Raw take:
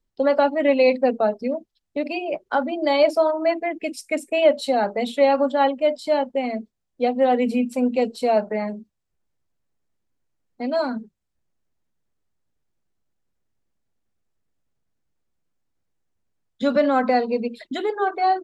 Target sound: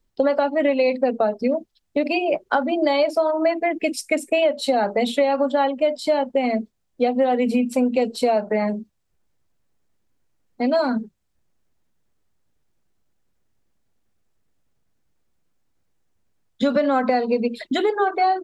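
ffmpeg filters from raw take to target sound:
ffmpeg -i in.wav -af "acompressor=threshold=-22dB:ratio=10,volume=6.5dB" out.wav

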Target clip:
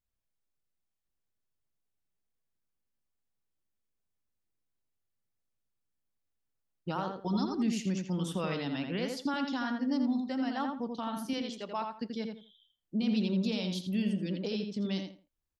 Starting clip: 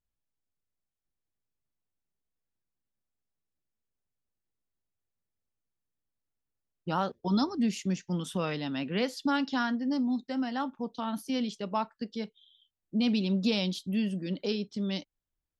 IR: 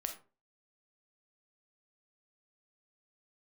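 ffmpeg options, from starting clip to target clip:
-filter_complex "[0:a]asettb=1/sr,asplit=3[link_01][link_02][link_03];[link_01]atrim=end=11.334[link_04];[link_02]atrim=start=11.33:end=11.9,asetpts=PTS-STARTPTS,afade=type=in:duration=0.004:curve=qsin,afade=type=out:start_time=0.566:duration=0.004:curve=qsin,equalizer=frequency=94:width_type=o:width=2.7:gain=-14.5[link_05];[link_03]atrim=start=11.896[link_06];[link_04][link_05]acrossfade=duration=0.004:curve1=hsin:curve2=qsin[link_07];[link_07][link_06]acrossfade=duration=0.004:curve1=qsin:curve2=hsin,alimiter=limit=-23dB:level=0:latency=1,asplit=2[link_08][link_09];[link_09]adelay=83,lowpass=frequency=2600:poles=1,volume=-4dB,asplit=2[link_10][link_11];[link_11]adelay=83,lowpass=frequency=2600:poles=1,volume=0.24,asplit=2[link_12][link_13];[link_13]adelay=83,lowpass=frequency=2600:poles=1,volume=0.24[link_14];[link_08][link_10][link_12][link_14]amix=inputs=4:normalize=0,volume=-1.5dB"

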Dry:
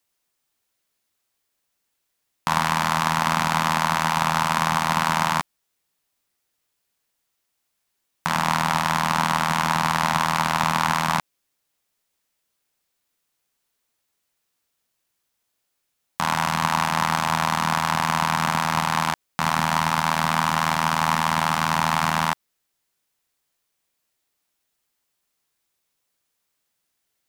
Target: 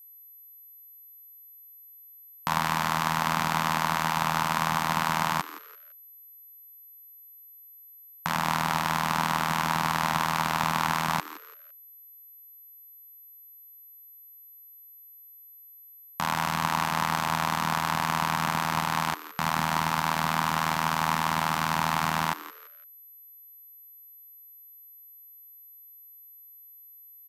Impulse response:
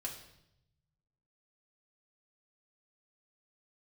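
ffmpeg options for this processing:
-filter_complex "[0:a]aeval=exprs='val(0)+0.00708*sin(2*PI*12000*n/s)':channel_layout=same,asplit=4[link_01][link_02][link_03][link_04];[link_02]adelay=169,afreqshift=140,volume=-15.5dB[link_05];[link_03]adelay=338,afreqshift=280,volume=-25.7dB[link_06];[link_04]adelay=507,afreqshift=420,volume=-35.8dB[link_07];[link_01][link_05][link_06][link_07]amix=inputs=4:normalize=0,volume=-5dB"

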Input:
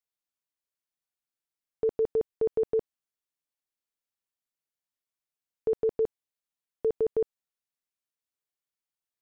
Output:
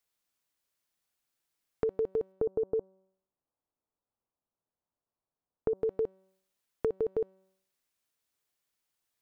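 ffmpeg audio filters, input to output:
ffmpeg -i in.wav -filter_complex "[0:a]asettb=1/sr,asplit=3[link_01][link_02][link_03];[link_01]atrim=end=2.324[link_04];[link_02]atrim=start=2.32:end=5.75,asetpts=PTS-STARTPTS,afade=type=in:duration=0.004:curve=qsin,afade=type=out:start_time=3.426:duration=0.004:curve=qsin,lowpass=frequency=1100:width=0.5412,lowpass=frequency=1100:width=1.3066[link_05];[link_03]atrim=start=5.746[link_06];[link_04][link_05]acrossfade=duration=0.004:curve1=hsin:curve2=qsin[link_07];[link_07][link_06]acrossfade=duration=0.004:curve1=qsin:curve2=hsin,bandreject=frequency=189.8:width_type=h:width=4,bandreject=frequency=379.6:width_type=h:width=4,bandreject=frequency=569.4:width_type=h:width=4,bandreject=frequency=759.2:width_type=h:width=4,bandreject=frequency=949:width_type=h:width=4,bandreject=frequency=1138.8:width_type=h:width=4,bandreject=frequency=1328.6:width_type=h:width=4,bandreject=frequency=1518.4:width_type=h:width=4,bandreject=frequency=1708.2:width_type=h:width=4,bandreject=frequency=1898:width_type=h:width=4,bandreject=frequency=2087.8:width_type=h:width=4,bandreject=frequency=2277.6:width_type=h:width=4,bandreject=frequency=2467.4:width_type=h:width=4,bandreject=frequency=2657.2:width_type=h:width=4,bandreject=frequency=2847:width_type=h:width=4,bandreject=frequency=3036.8:width_type=h:width=4,bandreject=frequency=3226.6:width_type=h:width=4,bandreject=frequency=3416.4:width_type=h:width=4,bandreject=frequency=3606.2:width_type=h:width=4,bandreject=frequency=3796:width_type=h:width=4,bandreject=frequency=3985.8:width_type=h:width=4,bandreject=frequency=4175.6:width_type=h:width=4,bandreject=frequency=4365.4:width_type=h:width=4,bandreject=frequency=4555.2:width_type=h:width=4,bandreject=frequency=4745:width_type=h:width=4,bandreject=frequency=4934.8:width_type=h:width=4,bandreject=frequency=5124.6:width_type=h:width=4,bandreject=frequency=5314.4:width_type=h:width=4,bandreject=frequency=5504.2:width_type=h:width=4,bandreject=frequency=5694:width_type=h:width=4,bandreject=frequency=5883.8:width_type=h:width=4,bandreject=frequency=6073.6:width_type=h:width=4,bandreject=frequency=6263.4:width_type=h:width=4,bandreject=frequency=6453.2:width_type=h:width=4,bandreject=frequency=6643:width_type=h:width=4,bandreject=frequency=6832.8:width_type=h:width=4,bandreject=frequency=7022.6:width_type=h:width=4,bandreject=frequency=7212.4:width_type=h:width=4,acompressor=threshold=-39dB:ratio=4,volume=8.5dB" out.wav

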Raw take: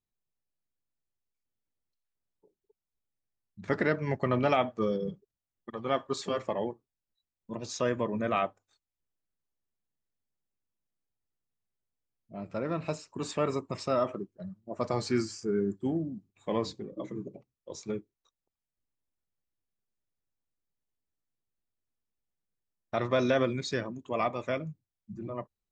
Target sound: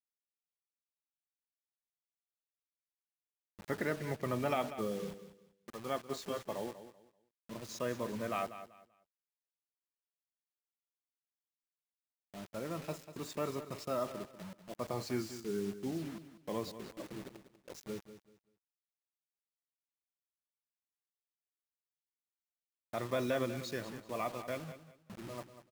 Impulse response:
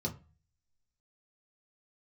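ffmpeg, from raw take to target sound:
-filter_complex "[0:a]acrusher=bits=6:mix=0:aa=0.000001,asplit=2[link_01][link_02];[link_02]aecho=0:1:193|386|579:0.237|0.0593|0.0148[link_03];[link_01][link_03]amix=inputs=2:normalize=0,volume=-8dB"

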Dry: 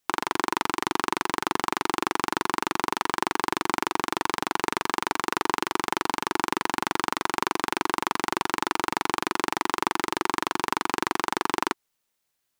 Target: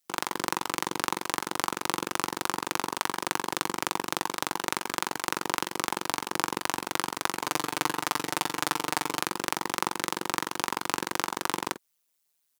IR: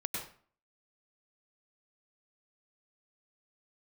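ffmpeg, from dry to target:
-filter_complex "[0:a]asettb=1/sr,asplit=3[link_01][link_02][link_03];[link_01]atrim=end=7.394[link_04];[link_02]atrim=start=7.39:end=9.2,asetpts=PTS-STARTPTS,afade=type=in:duration=0.004:curve=qsin,afade=type=out:start_time=1.806:duration=0.004:curve=qsin,aecho=1:1:6.7:0.58,atrim=end_sample=79821[link_05];[link_03]atrim=start=9.196[link_06];[link_04][link_05]acrossfade=duration=0.004:curve1=hsin:curve2=qsin[link_07];[link_07][link_06]acrossfade=duration=0.004:curve1=qsin:curve2=hsin,aecho=1:1:20|46:0.15|0.422,tremolo=f=160:d=0.974,highpass=110,highshelf=frequency=4200:gain=10,volume=-2dB"

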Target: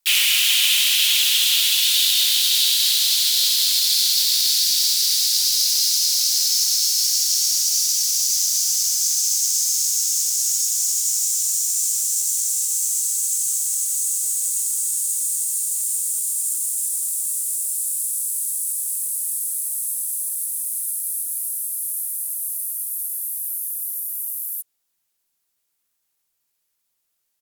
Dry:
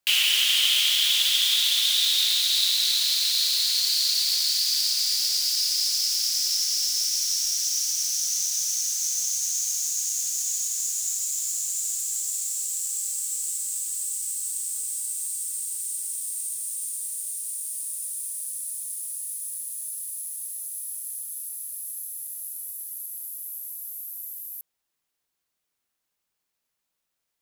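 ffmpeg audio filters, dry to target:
ffmpeg -i in.wav -filter_complex "[0:a]afreqshift=-53,aemphasis=mode=production:type=cd,asplit=4[link_01][link_02][link_03][link_04];[link_02]asetrate=35002,aresample=44100,atempo=1.25992,volume=-15dB[link_05];[link_03]asetrate=37084,aresample=44100,atempo=1.18921,volume=-6dB[link_06];[link_04]asetrate=52444,aresample=44100,atempo=0.840896,volume=-5dB[link_07];[link_01][link_05][link_06][link_07]amix=inputs=4:normalize=0,volume=-1.5dB" out.wav

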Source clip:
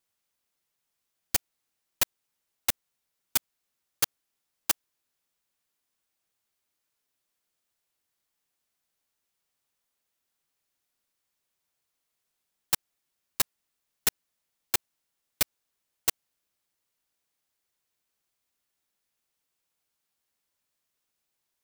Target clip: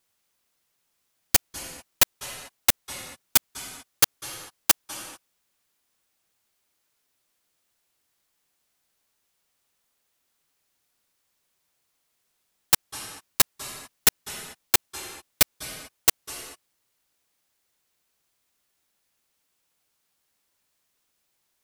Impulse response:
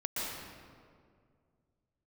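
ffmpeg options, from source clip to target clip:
-filter_complex "[0:a]asplit=2[link_01][link_02];[1:a]atrim=start_sample=2205,afade=type=out:start_time=0.31:duration=0.01,atrim=end_sample=14112,asetrate=25578,aresample=44100[link_03];[link_02][link_03]afir=irnorm=-1:irlink=0,volume=-16.5dB[link_04];[link_01][link_04]amix=inputs=2:normalize=0,volume=6dB"

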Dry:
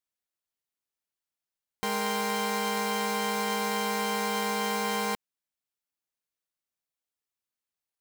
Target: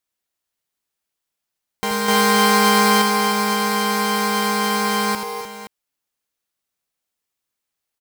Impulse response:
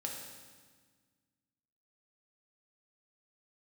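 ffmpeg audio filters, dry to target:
-filter_complex "[0:a]asettb=1/sr,asplit=3[link_01][link_02][link_03];[link_01]atrim=end=2.084[link_04];[link_02]atrim=start=2.08:end=3.02,asetpts=PTS-STARTPTS,afade=type=in:duration=0.004:curve=qsin,afade=type=out:start_time=0.936:duration=0.004:curve=qsin,acontrast=36[link_05];[link_03]atrim=start=3.016[link_06];[link_04][link_05]acrossfade=duration=0.004:curve1=hsin:curve2=qsin[link_07];[link_07][link_06]acrossfade=duration=0.004:curve1=qsin:curve2=hsin,asplit=2[link_08][link_09];[link_09]aecho=0:1:81|260|301|520:0.473|0.224|0.299|0.224[link_10];[link_08][link_10]amix=inputs=2:normalize=0,volume=7.5dB"

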